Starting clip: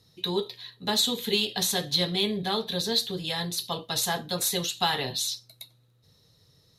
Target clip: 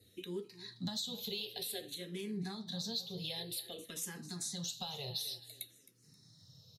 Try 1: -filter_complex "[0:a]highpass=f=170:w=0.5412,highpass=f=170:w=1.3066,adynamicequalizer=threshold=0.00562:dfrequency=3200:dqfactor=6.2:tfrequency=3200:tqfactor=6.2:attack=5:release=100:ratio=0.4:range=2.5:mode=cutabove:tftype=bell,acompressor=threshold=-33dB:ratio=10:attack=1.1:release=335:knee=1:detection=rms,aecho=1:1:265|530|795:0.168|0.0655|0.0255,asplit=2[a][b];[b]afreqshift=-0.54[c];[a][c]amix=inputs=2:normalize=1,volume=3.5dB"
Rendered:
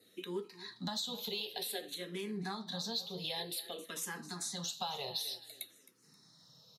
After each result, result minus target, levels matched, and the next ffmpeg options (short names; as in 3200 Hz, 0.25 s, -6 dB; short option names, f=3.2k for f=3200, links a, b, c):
1000 Hz band +7.0 dB; 125 Hz band -3.5 dB
-filter_complex "[0:a]highpass=f=170:w=0.5412,highpass=f=170:w=1.3066,adynamicequalizer=threshold=0.00562:dfrequency=3200:dqfactor=6.2:tfrequency=3200:tqfactor=6.2:attack=5:release=100:ratio=0.4:range=2.5:mode=cutabove:tftype=bell,acompressor=threshold=-33dB:ratio=10:attack=1.1:release=335:knee=1:detection=rms,equalizer=f=1.1k:w=0.9:g=-11,aecho=1:1:265|530|795:0.168|0.0655|0.0255,asplit=2[a][b];[b]afreqshift=-0.54[c];[a][c]amix=inputs=2:normalize=1,volume=3.5dB"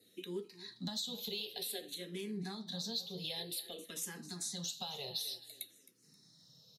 125 Hz band -2.5 dB
-filter_complex "[0:a]highpass=f=83:w=0.5412,highpass=f=83:w=1.3066,adynamicequalizer=threshold=0.00562:dfrequency=3200:dqfactor=6.2:tfrequency=3200:tqfactor=6.2:attack=5:release=100:ratio=0.4:range=2.5:mode=cutabove:tftype=bell,acompressor=threshold=-33dB:ratio=10:attack=1.1:release=335:knee=1:detection=rms,equalizer=f=1.1k:w=0.9:g=-11,aecho=1:1:265|530|795:0.168|0.0655|0.0255,asplit=2[a][b];[b]afreqshift=-0.54[c];[a][c]amix=inputs=2:normalize=1,volume=3.5dB"